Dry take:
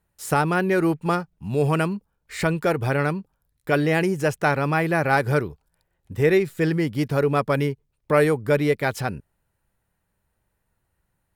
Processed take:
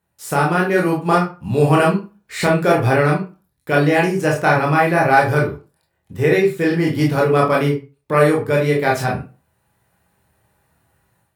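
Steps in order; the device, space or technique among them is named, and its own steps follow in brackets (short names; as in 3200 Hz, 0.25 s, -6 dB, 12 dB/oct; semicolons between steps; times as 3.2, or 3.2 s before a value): far laptop microphone (reverb RT60 0.30 s, pre-delay 20 ms, DRR -3 dB; HPF 100 Hz; AGC gain up to 10 dB); gain -1 dB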